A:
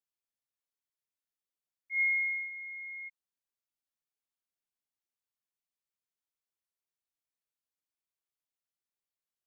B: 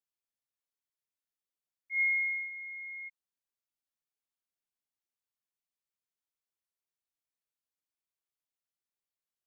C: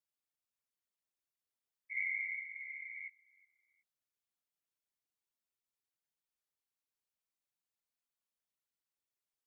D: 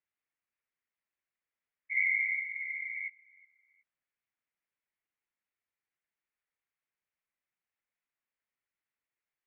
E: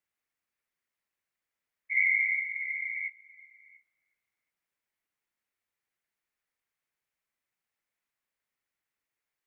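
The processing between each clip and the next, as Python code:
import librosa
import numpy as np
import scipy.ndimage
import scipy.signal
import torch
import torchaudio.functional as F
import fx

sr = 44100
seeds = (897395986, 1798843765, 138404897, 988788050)

y1 = x
y2 = fx.whisperise(y1, sr, seeds[0])
y2 = fx.dynamic_eq(y2, sr, hz=2000.0, q=0.9, threshold_db=-41.0, ratio=4.0, max_db=-6)
y2 = fx.echo_feedback(y2, sr, ms=367, feedback_pct=38, wet_db=-24)
y2 = y2 * librosa.db_to_amplitude(-2.0)
y3 = fx.lowpass_res(y2, sr, hz=2100.0, q=2.7)
y4 = y3 + 10.0 ** (-23.5 / 20.0) * np.pad(y3, (int(688 * sr / 1000.0), 0))[:len(y3)]
y4 = y4 * librosa.db_to_amplitude(3.5)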